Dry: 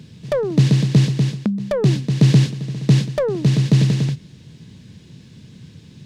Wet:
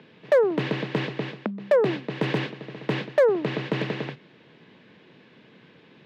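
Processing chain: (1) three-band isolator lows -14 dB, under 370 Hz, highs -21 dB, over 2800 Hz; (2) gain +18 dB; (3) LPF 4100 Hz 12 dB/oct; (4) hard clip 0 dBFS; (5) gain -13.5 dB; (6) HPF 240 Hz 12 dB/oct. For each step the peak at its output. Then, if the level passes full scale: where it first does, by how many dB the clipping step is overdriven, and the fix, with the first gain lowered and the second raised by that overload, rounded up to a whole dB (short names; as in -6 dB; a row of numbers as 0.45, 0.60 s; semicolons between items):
-11.5, +6.5, +6.5, 0.0, -13.5, -10.0 dBFS; step 2, 6.5 dB; step 2 +11 dB, step 5 -6.5 dB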